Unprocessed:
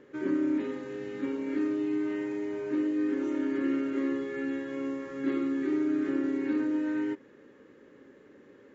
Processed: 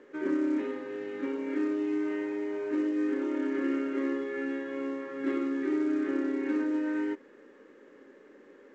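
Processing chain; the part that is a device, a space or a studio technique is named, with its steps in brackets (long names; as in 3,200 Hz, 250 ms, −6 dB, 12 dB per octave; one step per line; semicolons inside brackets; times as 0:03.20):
telephone (band-pass filter 290–3,100 Hz; level +2 dB; mu-law 128 kbit/s 16,000 Hz)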